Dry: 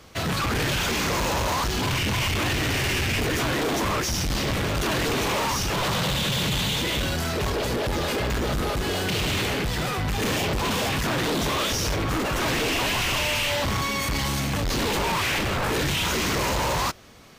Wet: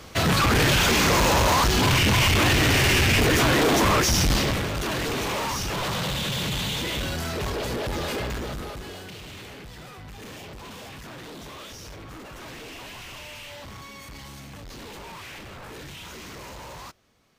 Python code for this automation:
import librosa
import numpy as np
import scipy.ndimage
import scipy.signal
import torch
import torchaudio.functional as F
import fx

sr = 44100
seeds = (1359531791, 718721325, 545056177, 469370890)

y = fx.gain(x, sr, db=fx.line((4.3, 5.0), (4.7, -3.0), (8.18, -3.0), (9.2, -16.0)))